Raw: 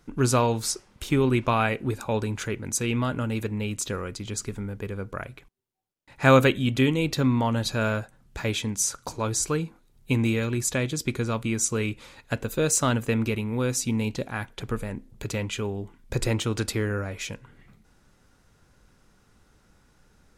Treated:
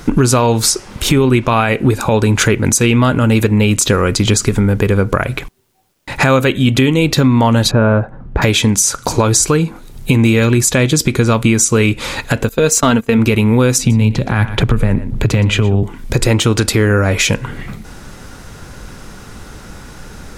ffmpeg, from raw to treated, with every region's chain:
-filter_complex "[0:a]asettb=1/sr,asplit=3[s0][s1][s2];[s0]atrim=end=7.714[s3];[s1]atrim=start=7.71:end=8.42,asetpts=PTS-STARTPTS,afade=t=in:d=0.004:c=qsin,afade=t=out:st=0.706:d=0.004:c=qsin,lowpass=1100,bandreject=f=670:w=22[s4];[s2]atrim=start=8.416[s5];[s3][s4]acrossfade=d=0.004:c1=hsin:c2=qsin[s6];[s6][s5]acrossfade=d=0.004:c1=qsin:c2=hsin,asettb=1/sr,asplit=3[s7][s8][s9];[s7]atrim=end=12.494[s10];[s8]atrim=start=12.49:end=13.19,asetpts=PTS-STARTPTS,afade=t=in:d=0.004:c=qsin,afade=t=out:st=0.696:d=0.004:c=qsin,agate=range=0.126:threshold=0.0398:ratio=16:release=100:detection=peak,equalizer=f=8800:w=3.8:g=-5.5,aecho=1:1:4.4:0.46,atrim=end_sample=30870[s11];[s9]atrim=start=13.186[s12];[s10][s11]acrossfade=d=0.004:c1=hsin:c2=qsin[s13];[s13][s12]acrossfade=d=0.004:c1=qsin:c2=hsin,asettb=1/sr,asplit=3[s14][s15][s16];[s14]atrim=end=13.784[s17];[s15]atrim=start=13.78:end=15.83,asetpts=PTS-STARTPTS,afade=t=in:d=0.004:c=qsin,afade=t=out:st=2.046:d=0.004:c=qsin,bass=f=250:g=5,treble=f=4000:g=-10,acrossover=split=150|3000[s18][s19][s20];[s19]acompressor=threshold=0.0316:ratio=6:attack=3.2:release=140:knee=2.83:detection=peak[s21];[s18][s21][s20]amix=inputs=3:normalize=0,aecho=1:1:119:0.158,atrim=end_sample=90405[s22];[s16]atrim=start=15.826[s23];[s17][s22]acrossfade=d=0.004:c1=hsin:c2=qsin[s24];[s24][s23]acrossfade=d=0.004:c1=qsin:c2=hsin,acompressor=threshold=0.0158:ratio=6,alimiter=level_in=25.1:limit=0.891:release=50:level=0:latency=1,volume=0.891"

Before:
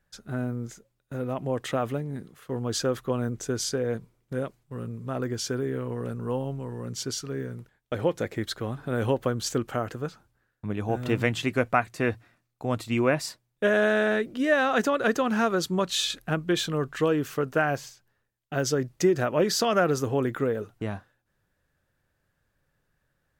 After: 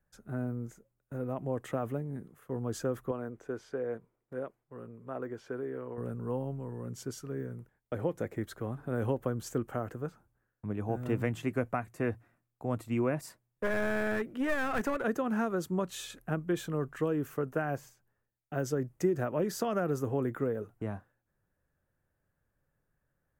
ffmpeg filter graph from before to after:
-filter_complex "[0:a]asettb=1/sr,asplit=3[s0][s1][s2];[s0]atrim=end=3.114[s3];[s1]atrim=start=3.11:end=5.98,asetpts=PTS-STARTPTS,afade=t=in:d=0.004:c=qsin,afade=t=out:st=2.866:d=0.004:c=qsin,acrossover=split=4500[s4][s5];[s5]acompressor=threshold=0.00398:ratio=4:attack=1:release=60[s6];[s4][s6]amix=inputs=2:normalize=0,bass=f=250:g=-12,treble=f=4000:g=-9[s7];[s2]atrim=start=5.976[s8];[s3][s7]acrossfade=d=0.004:c1=hsin:c2=qsin[s9];[s9][s8]acrossfade=d=0.004:c1=qsin:c2=hsin,asettb=1/sr,asplit=3[s10][s11][s12];[s10]atrim=end=13.214[s13];[s11]atrim=start=13.21:end=15.03,asetpts=PTS-STARTPTS,afade=t=in:d=0.004:c=qsin,afade=t=out:st=1.816:d=0.004:c=qsin,adynamicequalizer=threshold=0.01:dfrequency=2200:dqfactor=0.76:tfrequency=2200:tqfactor=0.76:attack=5:release=100:ratio=0.375:range=4:mode=boostabove:tftype=bell,aeval=exprs='clip(val(0),-1,0.0596)':c=same[s14];[s12]atrim=start=15.026[s15];[s13][s14]acrossfade=d=0.004:c1=hsin:c2=qsin[s16];[s16][s15]acrossfade=d=0.004:c1=qsin:c2=hsin,equalizer=f=4100:t=o:w=1.6:g=-14.5,acrossover=split=310|3000[s17][s18][s19];[s18]acompressor=threshold=0.0562:ratio=6[s20];[s17][s20][s19]amix=inputs=3:normalize=0,volume=0.596"

